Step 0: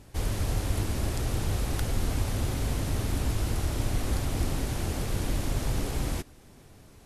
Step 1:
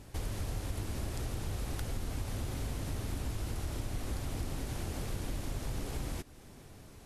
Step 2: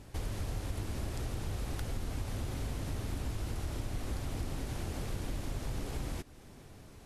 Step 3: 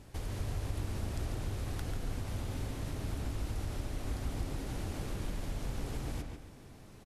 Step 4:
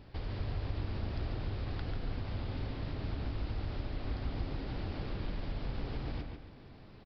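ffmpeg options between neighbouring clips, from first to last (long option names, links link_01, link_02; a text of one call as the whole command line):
ffmpeg -i in.wav -af "acompressor=threshold=-37dB:ratio=2.5" out.wav
ffmpeg -i in.wav -af "highshelf=frequency=7100:gain=-4" out.wav
ffmpeg -i in.wav -filter_complex "[0:a]asplit=2[link_01][link_02];[link_02]adelay=142,lowpass=frequency=3500:poles=1,volume=-4dB,asplit=2[link_03][link_04];[link_04]adelay=142,lowpass=frequency=3500:poles=1,volume=0.37,asplit=2[link_05][link_06];[link_06]adelay=142,lowpass=frequency=3500:poles=1,volume=0.37,asplit=2[link_07][link_08];[link_08]adelay=142,lowpass=frequency=3500:poles=1,volume=0.37,asplit=2[link_09][link_10];[link_10]adelay=142,lowpass=frequency=3500:poles=1,volume=0.37[link_11];[link_01][link_03][link_05][link_07][link_09][link_11]amix=inputs=6:normalize=0,volume=-2dB" out.wav
ffmpeg -i in.wav -af "aresample=11025,aresample=44100" out.wav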